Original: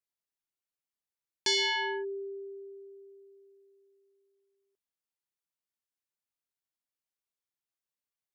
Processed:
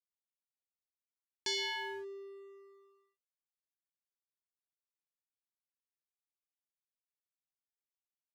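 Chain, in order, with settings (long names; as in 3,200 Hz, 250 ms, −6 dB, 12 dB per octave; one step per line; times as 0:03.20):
dead-zone distortion −51.5 dBFS
level −7.5 dB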